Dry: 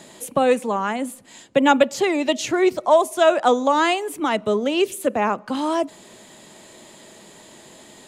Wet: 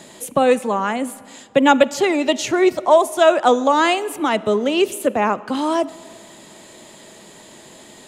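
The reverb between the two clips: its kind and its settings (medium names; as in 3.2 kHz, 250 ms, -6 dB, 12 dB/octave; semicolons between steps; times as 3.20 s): algorithmic reverb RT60 2.2 s, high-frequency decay 0.65×, pre-delay 10 ms, DRR 19 dB; trim +2.5 dB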